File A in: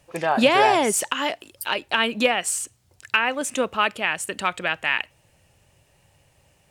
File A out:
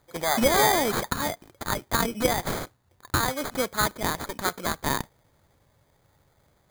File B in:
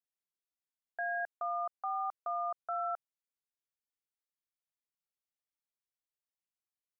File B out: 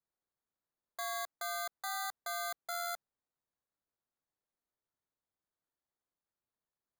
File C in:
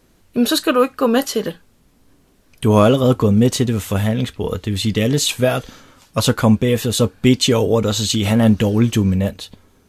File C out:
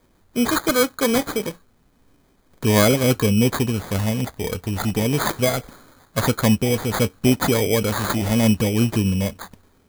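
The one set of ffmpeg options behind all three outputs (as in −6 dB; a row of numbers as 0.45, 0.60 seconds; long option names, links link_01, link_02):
-af "acrusher=samples=16:mix=1:aa=0.000001,highshelf=frequency=6800:gain=6.5,volume=-4dB"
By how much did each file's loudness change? −3.5, −2.0, −3.5 LU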